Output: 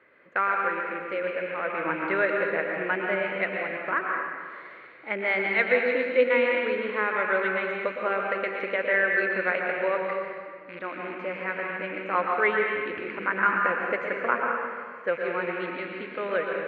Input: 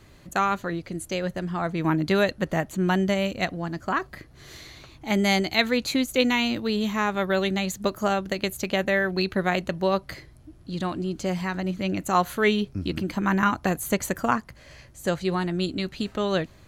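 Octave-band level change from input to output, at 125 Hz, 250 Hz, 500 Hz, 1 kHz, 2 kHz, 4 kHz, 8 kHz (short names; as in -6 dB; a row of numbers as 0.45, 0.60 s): under -15 dB, -11.0 dB, +0.5 dB, -0.5 dB, +4.0 dB, -12.5 dB, under -40 dB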